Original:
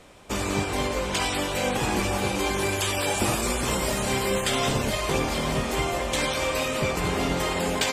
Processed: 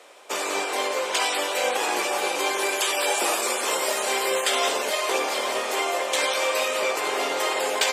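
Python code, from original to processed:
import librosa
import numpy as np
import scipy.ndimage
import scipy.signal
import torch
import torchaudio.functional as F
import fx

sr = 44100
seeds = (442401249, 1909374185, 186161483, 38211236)

y = scipy.signal.sosfilt(scipy.signal.butter(4, 410.0, 'highpass', fs=sr, output='sos'), x)
y = y * librosa.db_to_amplitude(3.0)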